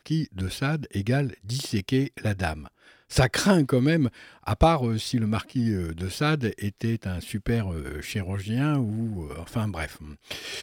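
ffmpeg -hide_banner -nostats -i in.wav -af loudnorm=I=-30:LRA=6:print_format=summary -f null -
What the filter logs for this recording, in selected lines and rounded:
Input Integrated:    -27.1 LUFS
Input True Peak:      -8.2 dBTP
Input LRA:             6.2 LU
Input Threshold:     -37.4 LUFS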